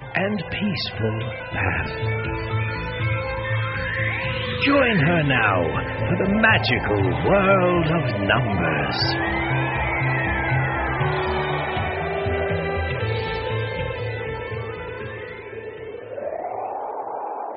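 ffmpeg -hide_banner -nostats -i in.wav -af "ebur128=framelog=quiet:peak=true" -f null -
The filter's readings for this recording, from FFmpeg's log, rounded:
Integrated loudness:
  I:         -22.2 LUFS
  Threshold: -32.4 LUFS
Loudness range:
  LRA:         9.6 LU
  Threshold: -42.0 LUFS
  LRA low:   -28.6 LUFS
  LRA high:  -19.0 LUFS
True peak:
  Peak:       -5.1 dBFS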